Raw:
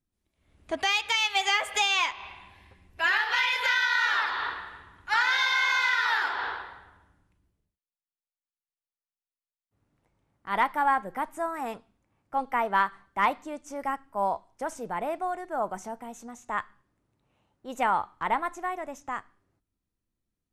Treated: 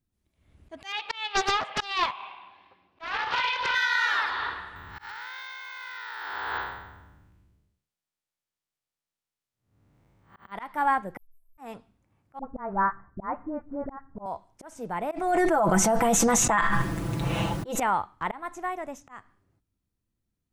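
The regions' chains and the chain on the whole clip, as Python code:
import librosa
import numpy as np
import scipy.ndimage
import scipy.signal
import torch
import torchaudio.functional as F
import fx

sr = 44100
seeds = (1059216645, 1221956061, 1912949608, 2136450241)

y = fx.chain(x, sr, fx.cabinet(low_hz=380.0, low_slope=12, high_hz=4100.0, hz=(450.0, 750.0, 1100.0, 1900.0), db=(-3, 3, 6, -9)),
    fx.doppler_dist(depth_ms=0.49), at=(0.92, 3.75))
y = fx.chain(y, sr, fx.spec_blur(span_ms=203.0),
    fx.over_compress(threshold_db=-37.0, ratio=-1.0),
    fx.resample_bad(factor=2, down='filtered', up='hold'), at=(4.76, 10.52))
y = fx.chain(y, sr, fx.cheby2_bandstop(low_hz=110.0, high_hz=5400.0, order=4, stop_db=70),
    fx.leveller(passes=1),
    fx.detune_double(cents=24), at=(11.17, 11.58))
y = fx.chain(y, sr, fx.steep_lowpass(hz=1700.0, slope=36),
    fx.tilt_eq(slope=-2.0),
    fx.dispersion(late='highs', ms=60.0, hz=720.0), at=(12.39, 14.26))
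y = fx.chain(y, sr, fx.comb(ms=6.0, depth=0.78),
    fx.env_flatten(amount_pct=100), at=(15.11, 17.8))
y = fx.peak_eq(y, sr, hz=100.0, db=6.0, octaves=2.3)
y = fx.auto_swell(y, sr, attack_ms=238.0)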